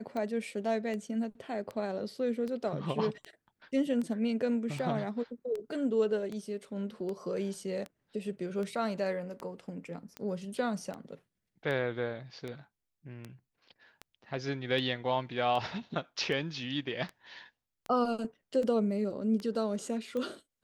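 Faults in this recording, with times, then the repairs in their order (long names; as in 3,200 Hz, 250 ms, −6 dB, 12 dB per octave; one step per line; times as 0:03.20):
scratch tick 78 rpm −26 dBFS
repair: click removal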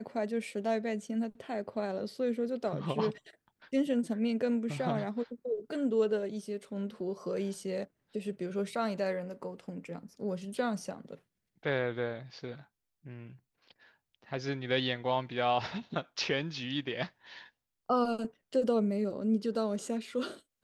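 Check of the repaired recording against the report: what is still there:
none of them is left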